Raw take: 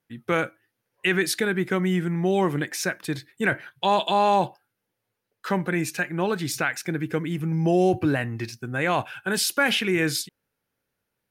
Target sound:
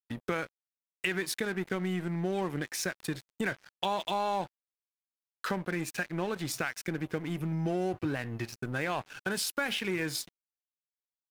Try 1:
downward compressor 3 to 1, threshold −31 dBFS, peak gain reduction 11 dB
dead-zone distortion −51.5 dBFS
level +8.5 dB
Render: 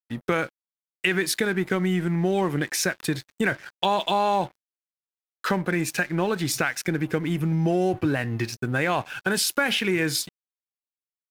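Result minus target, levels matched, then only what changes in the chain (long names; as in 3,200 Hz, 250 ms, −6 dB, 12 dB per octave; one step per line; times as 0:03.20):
downward compressor: peak gain reduction −7.5 dB
change: downward compressor 3 to 1, threshold −42.5 dBFS, peak gain reduction 19 dB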